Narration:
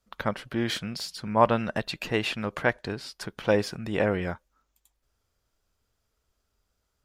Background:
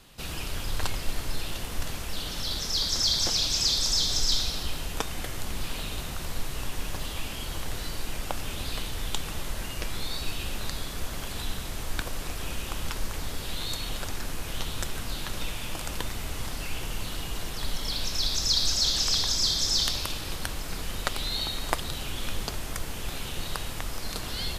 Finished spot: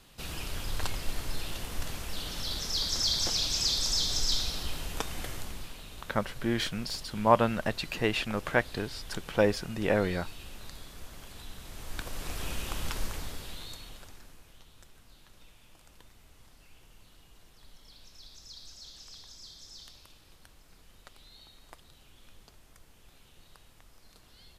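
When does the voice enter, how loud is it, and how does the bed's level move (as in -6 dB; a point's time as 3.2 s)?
5.90 s, -1.5 dB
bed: 5.32 s -3.5 dB
5.78 s -12.5 dB
11.51 s -12.5 dB
12.37 s -2 dB
13.03 s -2 dB
14.62 s -24 dB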